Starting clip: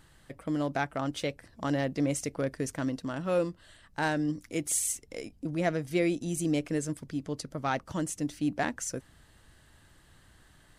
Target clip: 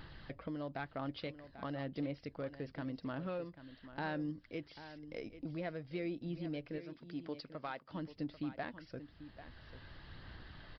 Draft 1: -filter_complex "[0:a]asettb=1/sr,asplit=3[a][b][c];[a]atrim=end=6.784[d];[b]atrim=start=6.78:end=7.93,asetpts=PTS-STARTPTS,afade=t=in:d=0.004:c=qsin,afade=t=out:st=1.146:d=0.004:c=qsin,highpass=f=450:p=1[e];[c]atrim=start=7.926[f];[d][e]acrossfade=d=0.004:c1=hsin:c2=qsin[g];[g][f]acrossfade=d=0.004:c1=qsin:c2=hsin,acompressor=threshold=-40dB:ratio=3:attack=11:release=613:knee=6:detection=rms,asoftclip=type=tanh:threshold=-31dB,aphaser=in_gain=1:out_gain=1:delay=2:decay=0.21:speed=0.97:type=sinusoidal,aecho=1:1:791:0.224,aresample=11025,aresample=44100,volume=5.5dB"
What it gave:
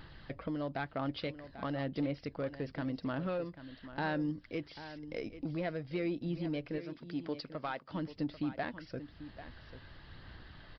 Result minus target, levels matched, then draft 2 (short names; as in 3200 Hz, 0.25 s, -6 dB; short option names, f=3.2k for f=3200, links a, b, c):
compressor: peak gain reduction -5.5 dB
-filter_complex "[0:a]asettb=1/sr,asplit=3[a][b][c];[a]atrim=end=6.784[d];[b]atrim=start=6.78:end=7.93,asetpts=PTS-STARTPTS,afade=t=in:d=0.004:c=qsin,afade=t=out:st=1.146:d=0.004:c=qsin,highpass=f=450:p=1[e];[c]atrim=start=7.926[f];[d][e]acrossfade=d=0.004:c1=hsin:c2=qsin[g];[g][f]acrossfade=d=0.004:c1=qsin:c2=hsin,acompressor=threshold=-48dB:ratio=3:attack=11:release=613:knee=6:detection=rms,asoftclip=type=tanh:threshold=-31dB,aphaser=in_gain=1:out_gain=1:delay=2:decay=0.21:speed=0.97:type=sinusoidal,aecho=1:1:791:0.224,aresample=11025,aresample=44100,volume=5.5dB"